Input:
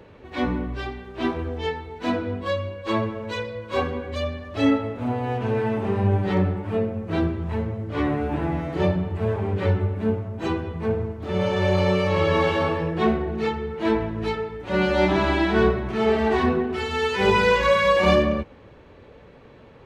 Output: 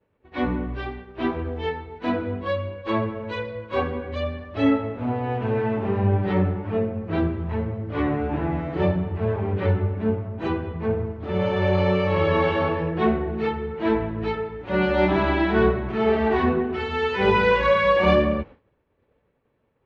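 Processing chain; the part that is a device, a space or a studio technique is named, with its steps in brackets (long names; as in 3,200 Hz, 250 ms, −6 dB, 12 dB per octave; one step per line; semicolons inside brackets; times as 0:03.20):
hearing-loss simulation (low-pass filter 3,100 Hz 12 dB per octave; downward expander −34 dBFS)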